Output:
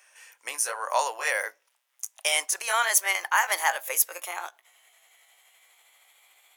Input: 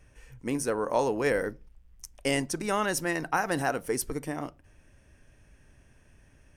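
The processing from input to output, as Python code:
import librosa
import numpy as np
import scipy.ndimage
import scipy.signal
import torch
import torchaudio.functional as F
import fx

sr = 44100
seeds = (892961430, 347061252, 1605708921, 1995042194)

y = fx.pitch_glide(x, sr, semitones=4.5, runs='starting unshifted')
y = scipy.signal.sosfilt(scipy.signal.butter(4, 690.0, 'highpass', fs=sr, output='sos'), y)
y = fx.tilt_eq(y, sr, slope=2.0)
y = y * 10.0 ** (5.5 / 20.0)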